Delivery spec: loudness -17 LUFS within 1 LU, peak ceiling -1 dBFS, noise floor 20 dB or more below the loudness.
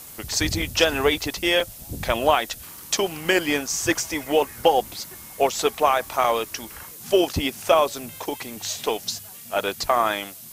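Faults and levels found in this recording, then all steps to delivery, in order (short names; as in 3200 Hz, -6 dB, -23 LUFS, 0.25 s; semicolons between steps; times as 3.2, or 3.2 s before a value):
dropouts 3; longest dropout 3.0 ms; noise floor -41 dBFS; noise floor target -43 dBFS; loudness -23.0 LUFS; peak -3.5 dBFS; loudness target -17.0 LUFS
-> interpolate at 0.62/1.6/6.24, 3 ms; denoiser 6 dB, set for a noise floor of -41 dBFS; gain +6 dB; limiter -1 dBFS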